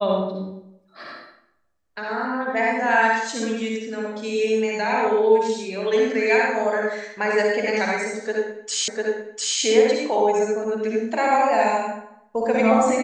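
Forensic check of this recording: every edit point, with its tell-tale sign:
0:08.88: the same again, the last 0.7 s

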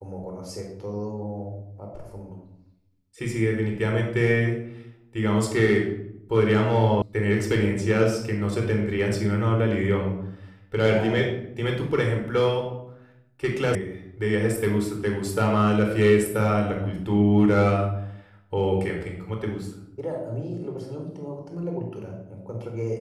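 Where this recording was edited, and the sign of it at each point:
0:07.02: cut off before it has died away
0:13.75: cut off before it has died away

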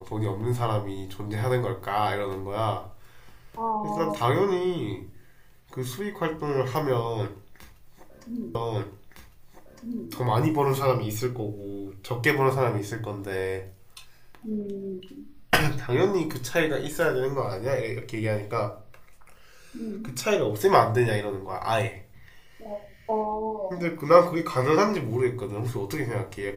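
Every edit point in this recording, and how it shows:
0:08.55: the same again, the last 1.56 s

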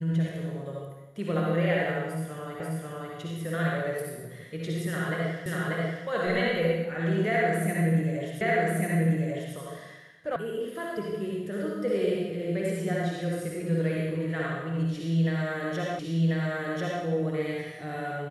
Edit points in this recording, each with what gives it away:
0:02.60: the same again, the last 0.54 s
0:05.46: the same again, the last 0.59 s
0:08.41: the same again, the last 1.14 s
0:10.36: cut off before it has died away
0:15.99: the same again, the last 1.04 s

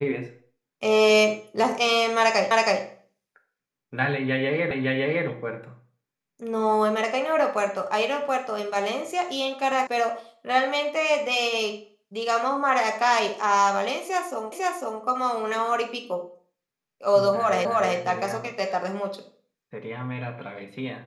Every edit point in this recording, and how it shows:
0:02.51: the same again, the last 0.32 s
0:04.71: the same again, the last 0.56 s
0:09.87: cut off before it has died away
0:14.52: the same again, the last 0.5 s
0:17.65: the same again, the last 0.31 s

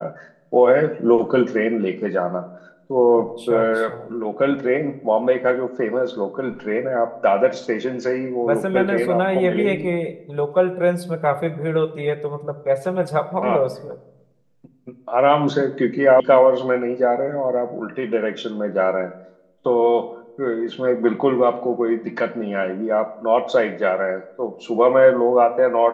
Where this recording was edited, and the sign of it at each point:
0:16.20: cut off before it has died away

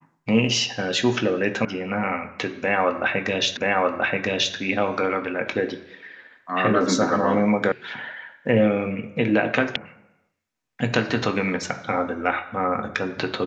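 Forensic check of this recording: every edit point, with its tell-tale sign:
0:01.65: cut off before it has died away
0:03.57: the same again, the last 0.98 s
0:07.72: cut off before it has died away
0:09.76: cut off before it has died away

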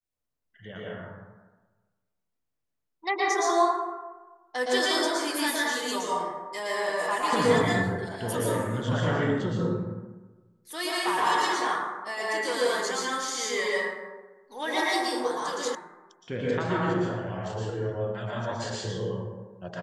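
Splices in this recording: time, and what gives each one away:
0:15.75: cut off before it has died away

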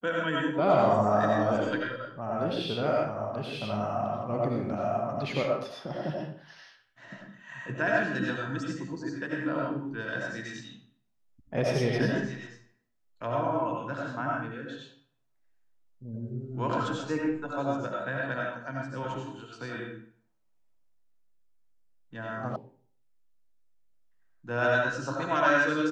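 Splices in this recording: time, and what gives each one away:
0:22.56: cut off before it has died away

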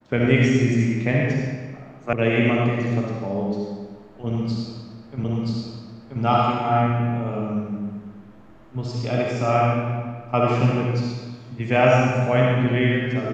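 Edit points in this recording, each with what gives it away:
0:02.13: cut off before it has died away
0:05.24: the same again, the last 0.98 s

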